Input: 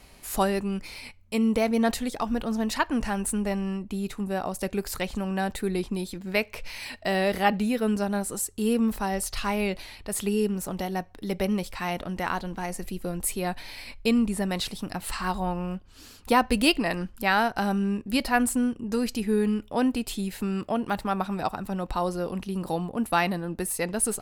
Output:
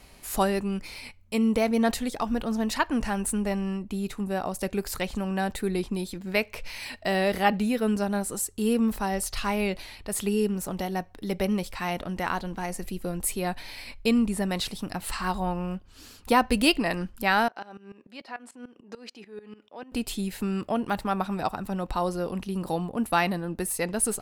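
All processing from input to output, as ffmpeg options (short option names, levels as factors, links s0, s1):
-filter_complex "[0:a]asettb=1/sr,asplit=3[s0][s1][s2];[s0]atrim=end=17.484[s3];[s1]atrim=start=17.48:end=19.92,asetpts=PTS-STARTPTS,afade=t=in:d=0.004:c=qsin,afade=t=out:st=2.436:d=0.004:c=qsin,acompressor=threshold=0.0398:ratio=6:attack=3.2:release=140:knee=1:detection=peak,highpass=360,lowpass=4500,aeval=exprs='val(0)*pow(10,-18*if(lt(mod(-6.8*n/s,1),2*abs(-6.8)/1000),1-mod(-6.8*n/s,1)/(2*abs(-6.8)/1000),(mod(-6.8*n/s,1)-2*abs(-6.8)/1000)/(1-2*abs(-6.8)/1000))/20)':c=same[s4];[s2]atrim=start=19.916[s5];[s3][s4]acrossfade=d=0.004:c1=hsin:c2=qsin[s6];[s6][s5]acrossfade=d=0.004:c1=qsin:c2=hsin"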